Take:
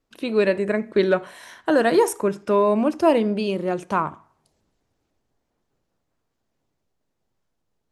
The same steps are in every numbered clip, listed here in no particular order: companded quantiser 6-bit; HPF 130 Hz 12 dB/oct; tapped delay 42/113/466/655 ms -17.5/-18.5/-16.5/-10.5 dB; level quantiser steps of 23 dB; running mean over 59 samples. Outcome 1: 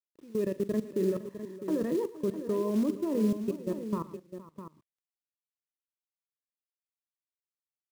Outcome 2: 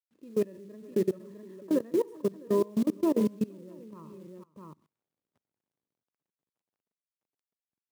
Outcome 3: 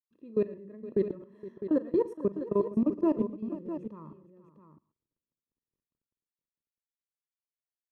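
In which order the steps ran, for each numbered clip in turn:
HPF > level quantiser > running mean > companded quantiser > tapped delay; running mean > companded quantiser > tapped delay > level quantiser > HPF; HPF > companded quantiser > running mean > level quantiser > tapped delay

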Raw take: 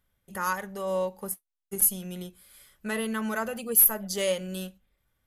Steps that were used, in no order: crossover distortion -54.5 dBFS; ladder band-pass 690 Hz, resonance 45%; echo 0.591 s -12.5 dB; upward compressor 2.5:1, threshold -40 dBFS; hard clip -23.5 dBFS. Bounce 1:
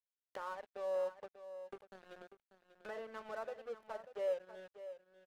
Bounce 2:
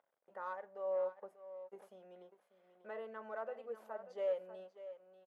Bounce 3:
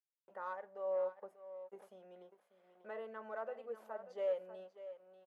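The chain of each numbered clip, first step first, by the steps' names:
hard clip > ladder band-pass > crossover distortion > upward compressor > echo; hard clip > echo > upward compressor > crossover distortion > ladder band-pass; hard clip > echo > crossover distortion > upward compressor > ladder band-pass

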